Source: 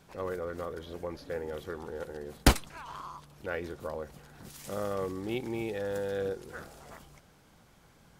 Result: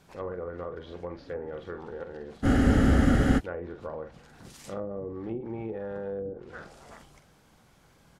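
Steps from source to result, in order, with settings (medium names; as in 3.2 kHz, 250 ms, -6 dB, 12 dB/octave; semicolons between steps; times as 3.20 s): doubling 45 ms -8.5 dB; low-pass that closes with the level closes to 400 Hz, closed at -28 dBFS; spectral freeze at 2.47 s, 0.90 s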